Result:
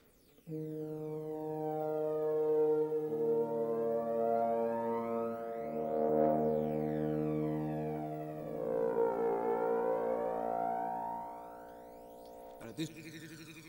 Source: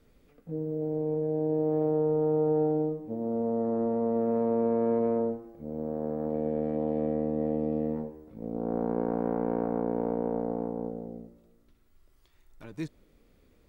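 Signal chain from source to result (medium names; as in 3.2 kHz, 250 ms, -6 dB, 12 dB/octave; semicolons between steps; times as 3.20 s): 5.41–6.09 s: overdrive pedal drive 13 dB, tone 1.6 kHz, clips at -22 dBFS; tilt EQ +3 dB/octave; echo with a slow build-up 85 ms, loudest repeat 5, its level -9.5 dB; phaser 0.16 Hz, delay 2.4 ms, feedback 61%; trim -4 dB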